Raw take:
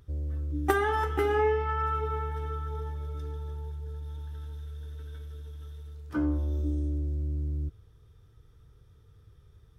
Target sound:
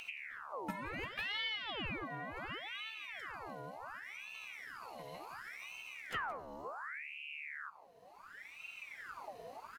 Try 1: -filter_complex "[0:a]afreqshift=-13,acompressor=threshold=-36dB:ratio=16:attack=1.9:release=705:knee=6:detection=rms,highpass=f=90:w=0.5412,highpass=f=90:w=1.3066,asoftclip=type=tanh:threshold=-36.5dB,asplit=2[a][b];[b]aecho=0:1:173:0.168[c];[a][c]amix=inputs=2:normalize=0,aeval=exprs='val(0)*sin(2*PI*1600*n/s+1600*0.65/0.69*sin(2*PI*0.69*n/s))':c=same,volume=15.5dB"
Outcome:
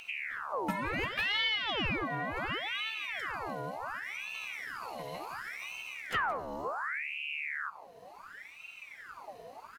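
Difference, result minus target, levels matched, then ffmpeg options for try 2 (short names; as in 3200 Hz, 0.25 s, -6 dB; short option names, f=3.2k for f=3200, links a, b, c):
compressor: peak gain reduction -9.5 dB
-filter_complex "[0:a]afreqshift=-13,acompressor=threshold=-46dB:ratio=16:attack=1.9:release=705:knee=6:detection=rms,highpass=f=90:w=0.5412,highpass=f=90:w=1.3066,asoftclip=type=tanh:threshold=-36.5dB,asplit=2[a][b];[b]aecho=0:1:173:0.168[c];[a][c]amix=inputs=2:normalize=0,aeval=exprs='val(0)*sin(2*PI*1600*n/s+1600*0.65/0.69*sin(2*PI*0.69*n/s))':c=same,volume=15.5dB"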